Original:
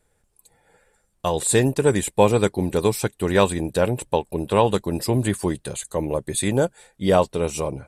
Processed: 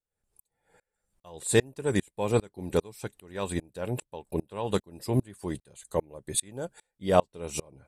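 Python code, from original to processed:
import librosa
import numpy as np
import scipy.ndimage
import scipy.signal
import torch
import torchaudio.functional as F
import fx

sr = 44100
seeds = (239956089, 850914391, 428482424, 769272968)

y = fx.tremolo_decay(x, sr, direction='swelling', hz=2.5, depth_db=32)
y = y * 10.0 ** (-1.0 / 20.0)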